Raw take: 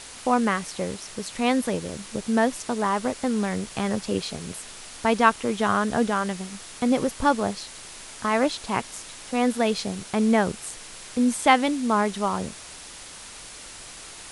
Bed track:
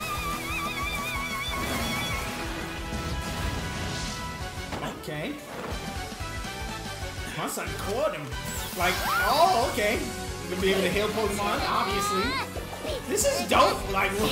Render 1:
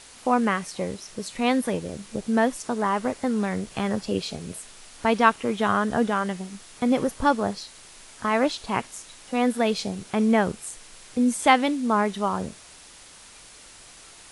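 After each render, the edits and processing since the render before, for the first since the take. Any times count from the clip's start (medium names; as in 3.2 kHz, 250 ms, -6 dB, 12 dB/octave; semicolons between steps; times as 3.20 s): noise print and reduce 6 dB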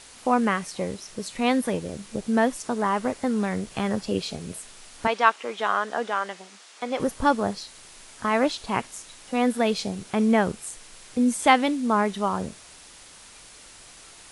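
5.07–7.00 s: band-pass 530–7300 Hz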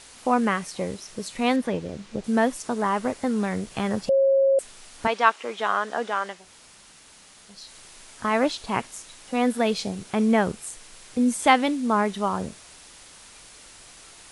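1.56–2.24 s: distance through air 81 m; 4.09–4.59 s: bleep 543 Hz -15.5 dBFS; 6.40–7.60 s: room tone, crossfade 0.24 s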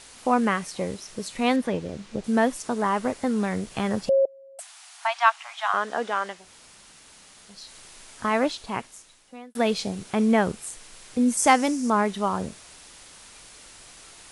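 4.25–5.74 s: steep high-pass 670 Hz 96 dB/octave; 8.26–9.55 s: fade out; 11.37–11.90 s: resonant high shelf 4.6 kHz +6.5 dB, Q 3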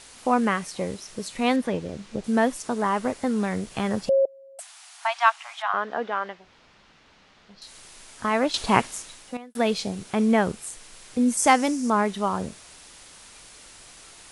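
5.62–7.62 s: distance through air 220 m; 8.54–9.37 s: gain +11 dB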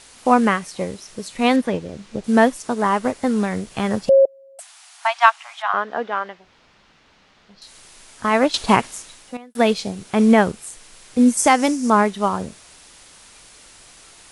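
loudness maximiser +8.5 dB; upward expansion 1.5:1, over -23 dBFS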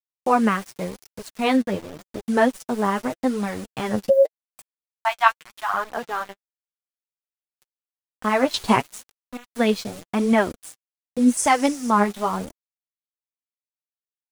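small samples zeroed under -31.5 dBFS; flange 0.87 Hz, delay 0.8 ms, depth 9.7 ms, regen +20%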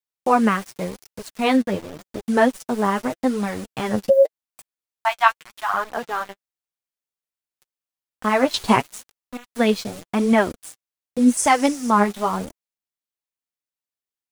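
trim +1.5 dB; peak limiter -2 dBFS, peak gain reduction 1.5 dB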